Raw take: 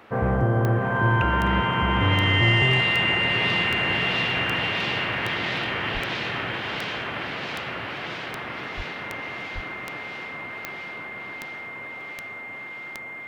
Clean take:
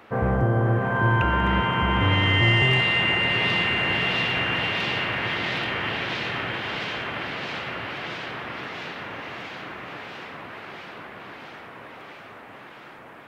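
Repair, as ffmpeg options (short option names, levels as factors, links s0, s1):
-filter_complex "[0:a]adeclick=t=4,bandreject=f=2100:w=30,asplit=3[s0][s1][s2];[s0]afade=t=out:st=5.93:d=0.02[s3];[s1]highpass=f=140:w=0.5412,highpass=f=140:w=1.3066,afade=t=in:st=5.93:d=0.02,afade=t=out:st=6.05:d=0.02[s4];[s2]afade=t=in:st=6.05:d=0.02[s5];[s3][s4][s5]amix=inputs=3:normalize=0,asplit=3[s6][s7][s8];[s6]afade=t=out:st=8.76:d=0.02[s9];[s7]highpass=f=140:w=0.5412,highpass=f=140:w=1.3066,afade=t=in:st=8.76:d=0.02,afade=t=out:st=8.88:d=0.02[s10];[s8]afade=t=in:st=8.88:d=0.02[s11];[s9][s10][s11]amix=inputs=3:normalize=0,asplit=3[s12][s13][s14];[s12]afade=t=out:st=9.54:d=0.02[s15];[s13]highpass=f=140:w=0.5412,highpass=f=140:w=1.3066,afade=t=in:st=9.54:d=0.02,afade=t=out:st=9.66:d=0.02[s16];[s14]afade=t=in:st=9.66:d=0.02[s17];[s15][s16][s17]amix=inputs=3:normalize=0"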